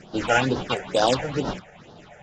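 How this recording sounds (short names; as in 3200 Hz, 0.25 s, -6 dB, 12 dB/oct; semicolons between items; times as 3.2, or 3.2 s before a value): aliases and images of a low sample rate 4300 Hz, jitter 20%; phasing stages 6, 2.2 Hz, lowest notch 270–2300 Hz; AAC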